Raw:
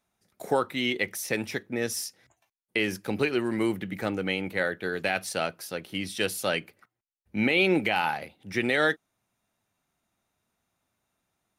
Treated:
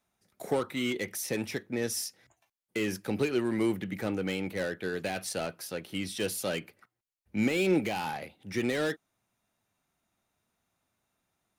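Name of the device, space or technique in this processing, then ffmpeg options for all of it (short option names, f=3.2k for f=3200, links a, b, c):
one-band saturation: -filter_complex "[0:a]acrossover=split=530|4500[a][b][c];[b]asoftclip=type=tanh:threshold=-33dB[d];[a][d][c]amix=inputs=3:normalize=0,volume=-1dB"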